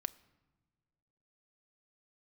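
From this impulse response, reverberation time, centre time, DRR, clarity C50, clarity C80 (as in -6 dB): no single decay rate, 2 ms, 12.0 dB, 21.0 dB, 22.5 dB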